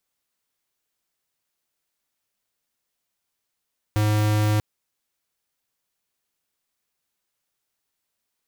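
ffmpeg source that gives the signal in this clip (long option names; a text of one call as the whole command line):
ffmpeg -f lavfi -i "aevalsrc='0.1*(2*lt(mod(106*t,1),0.5)-1)':duration=0.64:sample_rate=44100" out.wav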